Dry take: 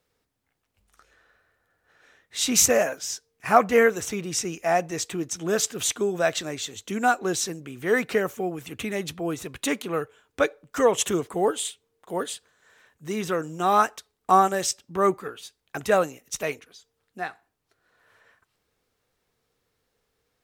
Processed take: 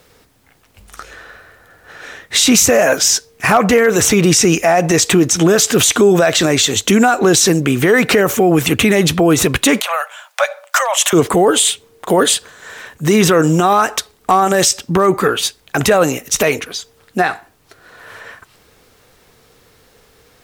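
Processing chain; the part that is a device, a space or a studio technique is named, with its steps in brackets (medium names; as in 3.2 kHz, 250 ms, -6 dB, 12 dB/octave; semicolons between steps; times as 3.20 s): loud club master (compression 2.5:1, threshold -23 dBFS, peak gain reduction 8.5 dB; hard clipper -15 dBFS, distortion -30 dB; loudness maximiser +26.5 dB); 9.80–11.13 s: steep high-pass 560 Hz 96 dB/octave; trim -2 dB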